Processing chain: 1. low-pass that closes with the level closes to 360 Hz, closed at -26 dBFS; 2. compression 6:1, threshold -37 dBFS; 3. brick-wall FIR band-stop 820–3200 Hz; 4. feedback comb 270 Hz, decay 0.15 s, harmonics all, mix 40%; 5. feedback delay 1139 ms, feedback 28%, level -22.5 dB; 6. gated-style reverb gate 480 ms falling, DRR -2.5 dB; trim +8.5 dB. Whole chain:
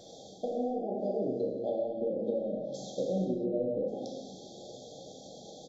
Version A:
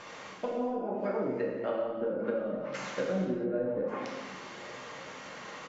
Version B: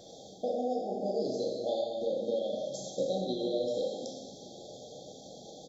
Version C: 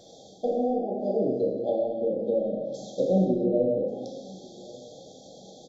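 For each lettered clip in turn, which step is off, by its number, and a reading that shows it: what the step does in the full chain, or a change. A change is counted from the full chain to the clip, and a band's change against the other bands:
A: 3, 1 kHz band +4.0 dB; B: 1, 4 kHz band +9.0 dB; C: 2, mean gain reduction 3.0 dB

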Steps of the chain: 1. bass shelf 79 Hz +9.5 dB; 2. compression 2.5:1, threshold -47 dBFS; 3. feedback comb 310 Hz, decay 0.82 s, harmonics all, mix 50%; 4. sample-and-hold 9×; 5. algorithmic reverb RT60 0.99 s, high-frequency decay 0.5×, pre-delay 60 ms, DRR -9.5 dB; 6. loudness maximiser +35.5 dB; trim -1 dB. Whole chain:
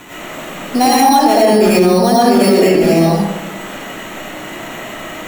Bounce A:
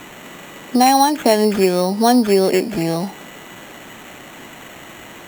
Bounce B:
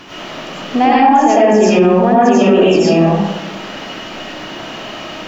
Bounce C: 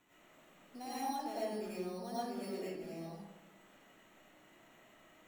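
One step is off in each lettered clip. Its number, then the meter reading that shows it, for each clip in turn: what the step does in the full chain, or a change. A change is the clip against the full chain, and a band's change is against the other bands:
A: 5, momentary loudness spread change -8 LU; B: 4, distortion -8 dB; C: 6, crest factor change +6.5 dB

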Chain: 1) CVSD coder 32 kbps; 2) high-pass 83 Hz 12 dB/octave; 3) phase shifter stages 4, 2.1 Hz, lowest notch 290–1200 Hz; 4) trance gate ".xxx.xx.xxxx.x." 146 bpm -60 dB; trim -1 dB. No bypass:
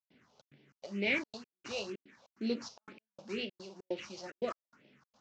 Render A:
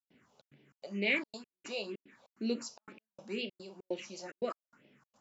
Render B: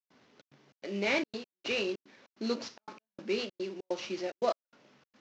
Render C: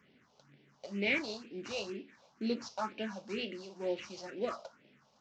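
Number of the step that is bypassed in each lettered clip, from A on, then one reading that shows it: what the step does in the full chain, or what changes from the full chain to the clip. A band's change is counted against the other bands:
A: 1, momentary loudness spread change +1 LU; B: 3, 1 kHz band +5.5 dB; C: 4, momentary loudness spread change -5 LU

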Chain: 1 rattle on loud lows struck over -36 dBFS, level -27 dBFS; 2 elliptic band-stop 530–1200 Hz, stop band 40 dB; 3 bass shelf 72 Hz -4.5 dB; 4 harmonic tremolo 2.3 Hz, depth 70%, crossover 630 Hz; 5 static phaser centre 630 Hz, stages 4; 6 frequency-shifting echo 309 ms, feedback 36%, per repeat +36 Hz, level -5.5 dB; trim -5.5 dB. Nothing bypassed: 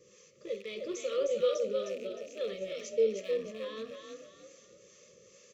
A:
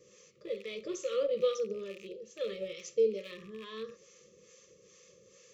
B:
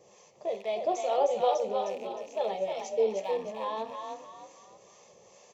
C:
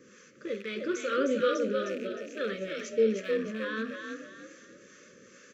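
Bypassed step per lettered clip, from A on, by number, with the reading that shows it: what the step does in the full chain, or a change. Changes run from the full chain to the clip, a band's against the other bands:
6, momentary loudness spread change -1 LU; 2, 1 kHz band +19.0 dB; 5, 500 Hz band -10.0 dB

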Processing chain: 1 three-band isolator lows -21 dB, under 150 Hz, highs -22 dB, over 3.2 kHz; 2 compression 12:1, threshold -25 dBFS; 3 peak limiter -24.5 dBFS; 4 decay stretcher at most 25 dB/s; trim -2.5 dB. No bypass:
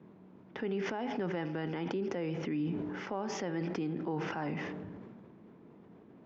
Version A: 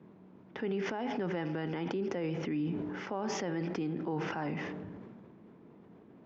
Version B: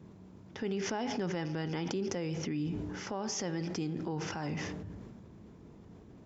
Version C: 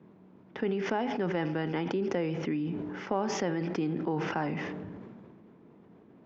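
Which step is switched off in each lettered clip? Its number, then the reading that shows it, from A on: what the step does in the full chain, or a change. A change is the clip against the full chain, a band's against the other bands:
2, mean gain reduction 3.0 dB; 1, 4 kHz band +6.5 dB; 3, momentary loudness spread change -3 LU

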